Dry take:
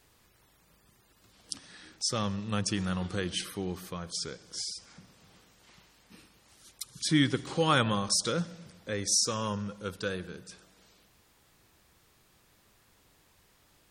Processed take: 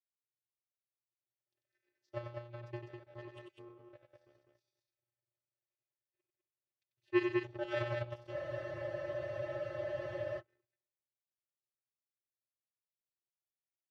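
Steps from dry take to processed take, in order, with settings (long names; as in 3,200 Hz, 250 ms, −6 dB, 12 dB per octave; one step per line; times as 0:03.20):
in parallel at −3 dB: downward compressor, threshold −40 dBFS, peak gain reduction 18.5 dB
on the sum: channel vocoder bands 16, square 119 Hz
formant filter e
power curve on the samples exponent 2
high-shelf EQ 6,300 Hz −10 dB
on a send: loudspeakers that aren't time-aligned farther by 32 metres −6 dB, 69 metres −4 dB
on the sum: frozen spectrum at 0:08.33, 2.05 s
level +15.5 dB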